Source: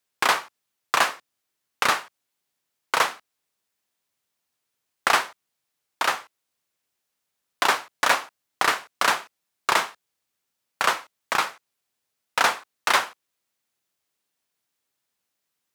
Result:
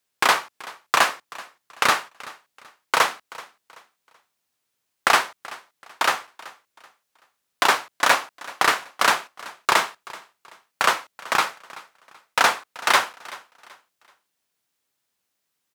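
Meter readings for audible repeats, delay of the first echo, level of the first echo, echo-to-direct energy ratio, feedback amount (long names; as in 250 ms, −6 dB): 2, 381 ms, −20.0 dB, −19.5 dB, 32%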